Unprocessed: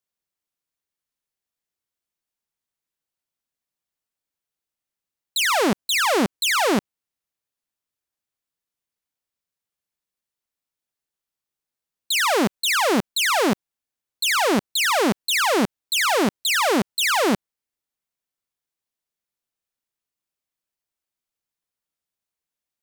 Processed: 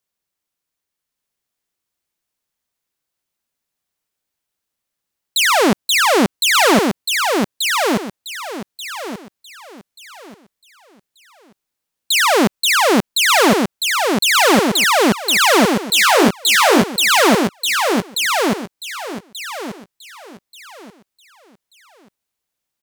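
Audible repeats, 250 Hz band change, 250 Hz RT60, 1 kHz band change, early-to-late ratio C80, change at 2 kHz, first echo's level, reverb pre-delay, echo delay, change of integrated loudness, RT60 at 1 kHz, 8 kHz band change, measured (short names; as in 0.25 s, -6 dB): 3, +7.5 dB, none, +7.5 dB, none, +7.5 dB, -3.5 dB, none, 1.184 s, +6.5 dB, none, +7.5 dB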